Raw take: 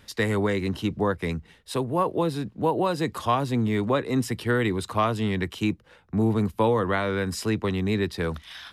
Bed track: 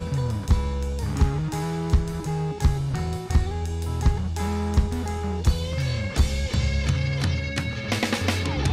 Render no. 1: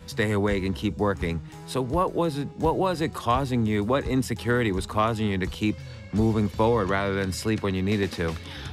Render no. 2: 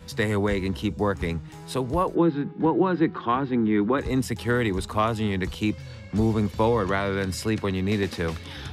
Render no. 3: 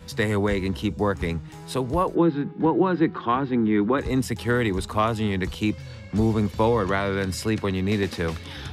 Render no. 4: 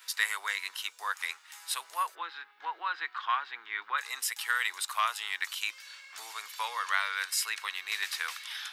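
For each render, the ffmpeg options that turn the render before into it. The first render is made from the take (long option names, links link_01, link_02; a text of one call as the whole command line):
ffmpeg -i in.wav -i bed.wav -filter_complex "[1:a]volume=-14.5dB[link_01];[0:a][link_01]amix=inputs=2:normalize=0" out.wav
ffmpeg -i in.wav -filter_complex "[0:a]asplit=3[link_01][link_02][link_03];[link_01]afade=type=out:start_time=2.14:duration=0.02[link_04];[link_02]highpass=frequency=110:width=0.5412,highpass=frequency=110:width=1.3066,equalizer=frequency=120:width_type=q:width=4:gain=-8,equalizer=frequency=180:width_type=q:width=4:gain=6,equalizer=frequency=330:width_type=q:width=4:gain=9,equalizer=frequency=610:width_type=q:width=4:gain=-9,equalizer=frequency=1500:width_type=q:width=4:gain=5,equalizer=frequency=2700:width_type=q:width=4:gain=-5,lowpass=frequency=3200:width=0.5412,lowpass=frequency=3200:width=1.3066,afade=type=in:start_time=2.14:duration=0.02,afade=type=out:start_time=3.97:duration=0.02[link_05];[link_03]afade=type=in:start_time=3.97:duration=0.02[link_06];[link_04][link_05][link_06]amix=inputs=3:normalize=0" out.wav
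ffmpeg -i in.wav -af "volume=1dB" out.wav
ffmpeg -i in.wav -af "highpass=frequency=1200:width=0.5412,highpass=frequency=1200:width=1.3066,highshelf=frequency=10000:gain=11.5" out.wav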